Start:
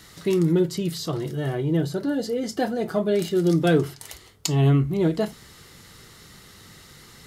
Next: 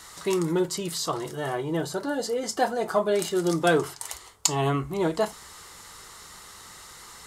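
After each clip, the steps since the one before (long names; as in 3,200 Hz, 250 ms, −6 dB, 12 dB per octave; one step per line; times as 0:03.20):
octave-band graphic EQ 125/250/1,000/8,000 Hz −9/−5/+11/+9 dB
level −1.5 dB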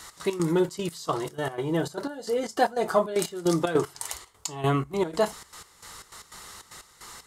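gate pattern "x.x.xxx.x..x" 152 BPM −12 dB
level +1.5 dB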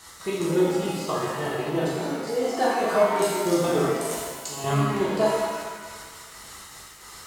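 reverb with rising layers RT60 1.5 s, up +7 semitones, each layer −8 dB, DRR −7 dB
level −5.5 dB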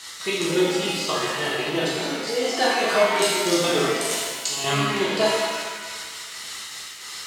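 meter weighting curve D
level +1 dB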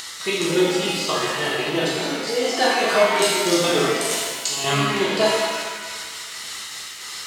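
upward compression, threshold −33 dBFS
level +2 dB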